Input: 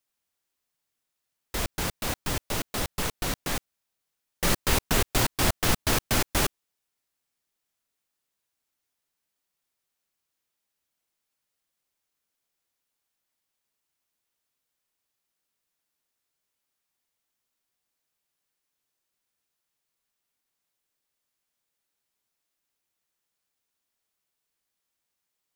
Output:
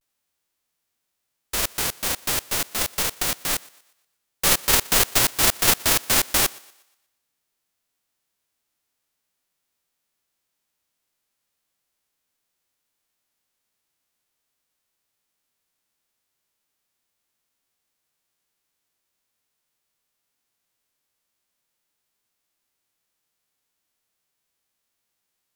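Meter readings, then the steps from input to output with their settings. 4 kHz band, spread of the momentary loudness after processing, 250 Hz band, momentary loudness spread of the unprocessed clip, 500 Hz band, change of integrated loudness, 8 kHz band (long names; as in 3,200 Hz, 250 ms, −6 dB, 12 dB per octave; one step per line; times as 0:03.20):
+7.0 dB, 8 LU, −2.0 dB, 8 LU, +1.0 dB, +7.0 dB, +9.0 dB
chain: spectral envelope flattened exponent 0.3
pitch vibrato 0.42 Hz 52 cents
feedback echo with a high-pass in the loop 120 ms, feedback 41%, high-pass 310 Hz, level −23 dB
level +4.5 dB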